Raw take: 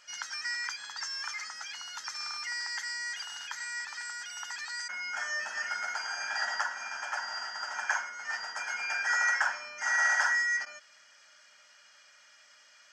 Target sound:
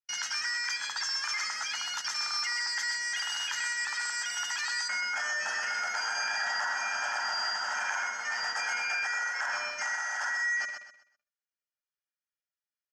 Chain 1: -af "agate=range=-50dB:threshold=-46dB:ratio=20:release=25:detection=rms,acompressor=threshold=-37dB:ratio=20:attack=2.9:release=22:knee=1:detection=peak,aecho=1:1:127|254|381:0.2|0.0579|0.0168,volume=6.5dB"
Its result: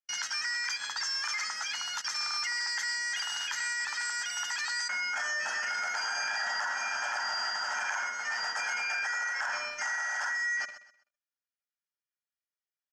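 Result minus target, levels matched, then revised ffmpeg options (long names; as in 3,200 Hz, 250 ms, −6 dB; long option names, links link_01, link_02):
echo-to-direct −7.5 dB
-af "agate=range=-50dB:threshold=-46dB:ratio=20:release=25:detection=rms,acompressor=threshold=-37dB:ratio=20:attack=2.9:release=22:knee=1:detection=peak,aecho=1:1:127|254|381|508:0.473|0.137|0.0398|0.0115,volume=6.5dB"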